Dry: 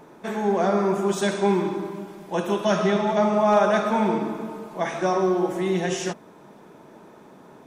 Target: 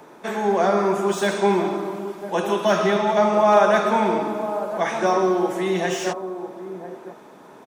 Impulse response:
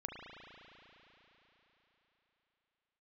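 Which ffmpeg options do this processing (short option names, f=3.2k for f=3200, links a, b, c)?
-filter_complex "[0:a]lowshelf=f=220:g=-11,acrossover=split=140|1300|2500[a][b][c][d];[b]aecho=1:1:1001:0.299[e];[d]asoftclip=type=tanh:threshold=-35dB[f];[a][e][c][f]amix=inputs=4:normalize=0,volume=4.5dB"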